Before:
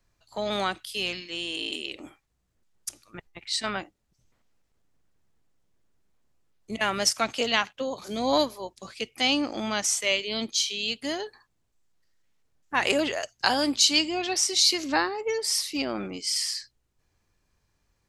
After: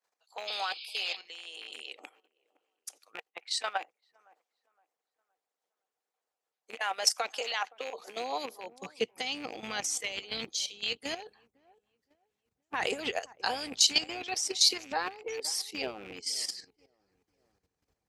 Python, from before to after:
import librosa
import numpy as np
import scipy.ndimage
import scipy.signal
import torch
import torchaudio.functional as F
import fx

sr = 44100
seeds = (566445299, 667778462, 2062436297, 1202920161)

p1 = fx.rattle_buzz(x, sr, strikes_db=-45.0, level_db=-26.0)
p2 = p1 + fx.echo_wet_lowpass(p1, sr, ms=516, feedback_pct=31, hz=1400.0, wet_db=-21.5, dry=0)
p3 = fx.spec_paint(p2, sr, seeds[0], shape='noise', start_s=0.47, length_s=0.7, low_hz=2200.0, high_hz=5200.0, level_db=-32.0)
p4 = fx.level_steps(p3, sr, step_db=10)
p5 = fx.filter_sweep_highpass(p4, sr, from_hz=630.0, to_hz=71.0, start_s=7.55, end_s=9.97, q=1.1)
p6 = fx.hpss(p5, sr, part='harmonic', gain_db=-13)
y = fx.small_body(p6, sr, hz=(470.0, 760.0), ring_ms=40, db=8)